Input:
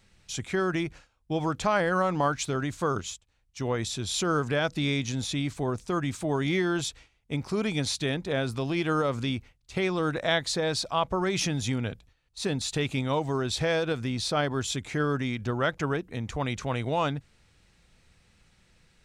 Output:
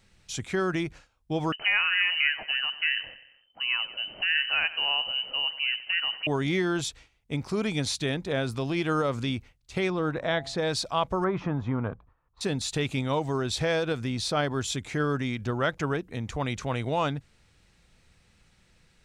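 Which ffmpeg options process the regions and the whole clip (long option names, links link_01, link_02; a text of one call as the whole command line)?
ffmpeg -i in.wav -filter_complex "[0:a]asettb=1/sr,asplit=3[link_01][link_02][link_03];[link_01]atrim=end=1.524[link_04];[link_02]atrim=start=1.52:end=6.27,asetpts=PTS-STARTPTS,afade=type=in:duration=0.004:curve=qsin,afade=type=out:start_time=4.746:duration=0.004:curve=qsin,aecho=1:1:92|184|276|368|460:0.158|0.0824|0.0429|0.0223|0.0116,atrim=end_sample=209475,lowpass=frequency=2600:width_type=q:width=0.5098,lowpass=frequency=2600:width_type=q:width=0.6013,lowpass=frequency=2600:width_type=q:width=0.9,lowpass=frequency=2600:width_type=q:width=2.563,afreqshift=-3100[link_05];[link_03]atrim=start=6.266[link_06];[link_04][link_05]acrossfade=duration=0.004:curve1=hsin:curve2=qsin[link_07];[link_07][link_06]acrossfade=duration=0.004:curve1=qsin:curve2=hsin,asettb=1/sr,asplit=3[link_08][link_09][link_10];[link_08]atrim=end=9.904[link_11];[link_09]atrim=start=9.9:end=10.58,asetpts=PTS-STARTPTS,afade=type=in:duration=0.004:curve=qsin,afade=type=out:start_time=0.676:duration=0.004:curve=qsin,lowpass=frequency=1900:poles=1,bandreject=frequency=135.4:width_type=h:width=4,bandreject=frequency=270.8:width_type=h:width=4,bandreject=frequency=406.2:width_type=h:width=4,bandreject=frequency=541.6:width_type=h:width=4,bandreject=frequency=677:width_type=h:width=4,bandreject=frequency=812.4:width_type=h:width=4,bandreject=frequency=947.8:width_type=h:width=4,bandreject=frequency=1083.2:width_type=h:width=4,acompressor=mode=upward:threshold=-31dB:ratio=2.5:attack=3.2:release=140:knee=2.83:detection=peak[link_12];[link_10]atrim=start=10.576[link_13];[link_11][link_12]acrossfade=duration=0.004:curve1=hsin:curve2=qsin[link_14];[link_14][link_13]acrossfade=duration=0.004:curve1=qsin:curve2=hsin,asettb=1/sr,asplit=3[link_15][link_16][link_17];[link_15]atrim=end=11.244[link_18];[link_16]atrim=start=11.24:end=12.41,asetpts=PTS-STARTPTS,afade=type=in:duration=0.004:curve=qsin,afade=type=out:start_time=1.166:duration=0.004:curve=qsin,lowpass=frequency=1100:width_type=q:width=4,bandreject=frequency=800:width=23[link_19];[link_17]atrim=start=12.406[link_20];[link_18][link_19]acrossfade=duration=0.004:curve1=hsin:curve2=qsin[link_21];[link_21][link_20]acrossfade=duration=0.004:curve1=qsin:curve2=hsin" out.wav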